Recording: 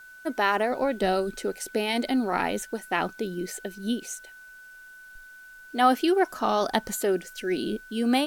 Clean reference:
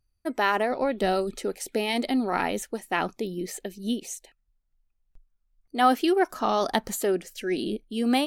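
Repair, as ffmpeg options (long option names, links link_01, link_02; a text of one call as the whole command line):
ffmpeg -i in.wav -af "bandreject=frequency=1500:width=30,agate=range=-21dB:threshold=-40dB" out.wav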